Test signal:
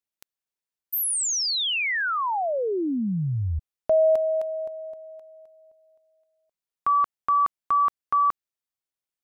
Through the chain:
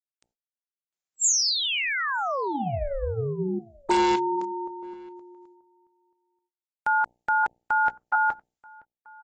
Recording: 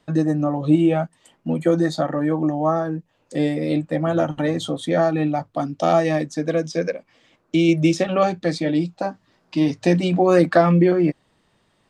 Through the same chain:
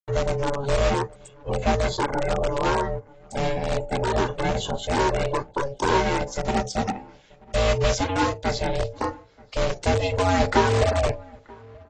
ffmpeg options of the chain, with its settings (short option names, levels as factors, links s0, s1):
-filter_complex "[0:a]bandreject=f=60:t=h:w=6,bandreject=f=120:t=h:w=6,bandreject=f=180:t=h:w=6,bandreject=f=240:t=h:w=6,bandreject=f=300:t=h:w=6,bandreject=f=360:t=h:w=6,bandreject=f=420:t=h:w=6,bandreject=f=480:t=h:w=6,bandreject=f=540:t=h:w=6,bandreject=f=600:t=h:w=6,agate=range=0.00141:threshold=0.00282:ratio=16:release=249:detection=rms,equalizer=f=7700:t=o:w=0.76:g=6.5,aeval=exprs='val(0)*sin(2*PI*280*n/s)':c=same,asplit=2[s0][s1];[s1]aeval=exprs='(mod(5.96*val(0)+1,2)-1)/5.96':c=same,volume=0.531[s2];[s0][s2]amix=inputs=2:normalize=0,asplit=2[s3][s4];[s4]adelay=932.9,volume=0.0631,highshelf=f=4000:g=-21[s5];[s3][s5]amix=inputs=2:normalize=0,volume=0.75" -ar 24000 -c:a aac -b:a 24k